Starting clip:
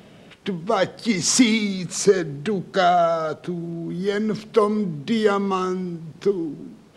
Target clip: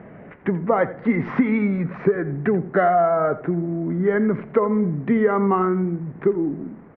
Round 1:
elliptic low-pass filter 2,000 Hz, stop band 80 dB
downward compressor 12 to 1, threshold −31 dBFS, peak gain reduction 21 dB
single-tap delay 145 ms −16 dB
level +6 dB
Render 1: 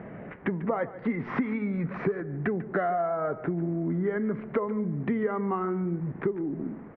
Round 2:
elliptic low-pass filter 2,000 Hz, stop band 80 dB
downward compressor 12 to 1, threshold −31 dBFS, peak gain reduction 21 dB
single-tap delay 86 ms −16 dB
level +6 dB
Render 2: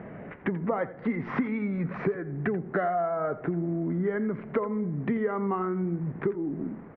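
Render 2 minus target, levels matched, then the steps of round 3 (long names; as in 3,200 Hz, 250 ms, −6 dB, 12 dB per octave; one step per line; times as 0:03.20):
downward compressor: peak gain reduction +10 dB
elliptic low-pass filter 2,000 Hz, stop band 80 dB
downward compressor 12 to 1, threshold −20 dBFS, peak gain reduction 10.5 dB
single-tap delay 86 ms −16 dB
level +6 dB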